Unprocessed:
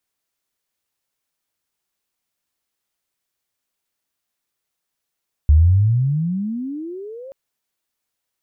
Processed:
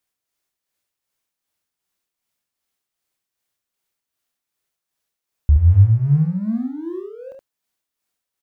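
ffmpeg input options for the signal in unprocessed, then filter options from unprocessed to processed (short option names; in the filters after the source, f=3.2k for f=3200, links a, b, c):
-f lavfi -i "aevalsrc='pow(10,(-7-26*t/1.83)/20)*sin(2*PI*71.3*1.83/(35.5*log(2)/12)*(exp(35.5*log(2)/12*t/1.83)-1))':d=1.83:s=44100"
-filter_complex "[0:a]asplit=2[a][b];[b]aeval=exprs='sgn(val(0))*max(abs(val(0))-0.02,0)':c=same,volume=-5dB[c];[a][c]amix=inputs=2:normalize=0,tremolo=f=2.6:d=0.55,aecho=1:1:27|71:0.282|0.596"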